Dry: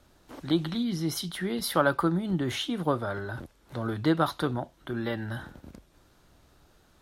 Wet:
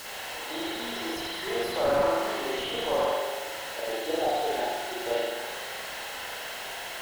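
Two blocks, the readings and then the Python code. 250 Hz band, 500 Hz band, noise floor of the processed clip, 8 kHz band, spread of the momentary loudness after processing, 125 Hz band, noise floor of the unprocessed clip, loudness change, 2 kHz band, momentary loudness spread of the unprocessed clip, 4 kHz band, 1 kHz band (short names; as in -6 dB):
-8.5 dB, +4.5 dB, -38 dBFS, +3.0 dB, 9 LU, -17.0 dB, -62 dBFS, -0.5 dB, +3.0 dB, 13 LU, +4.0 dB, +3.0 dB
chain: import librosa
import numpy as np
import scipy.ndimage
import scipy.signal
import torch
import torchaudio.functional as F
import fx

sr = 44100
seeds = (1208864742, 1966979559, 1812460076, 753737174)

y = fx.quant_float(x, sr, bits=2)
y = fx.high_shelf(y, sr, hz=5800.0, db=4.5)
y = fx.spec_erase(y, sr, start_s=3.0, length_s=2.15, low_hz=890.0, high_hz=2400.0)
y = fx.peak_eq(y, sr, hz=1500.0, db=-12.0, octaves=0.44)
y = fx.echo_thinned(y, sr, ms=79, feedback_pct=59, hz=620.0, wet_db=-5)
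y = fx.quant_dither(y, sr, seeds[0], bits=6, dither='triangular')
y = fx.level_steps(y, sr, step_db=10)
y = scipy.signal.sosfilt(scipy.signal.butter(4, 480.0, 'highpass', fs=sr, output='sos'), y)
y = fx.notch_comb(y, sr, f0_hz=1200.0)
y = fx.rev_spring(y, sr, rt60_s=1.3, pass_ms=(42,), chirp_ms=25, drr_db=-7.5)
y = fx.slew_limit(y, sr, full_power_hz=40.0)
y = y * librosa.db_to_amplitude(4.5)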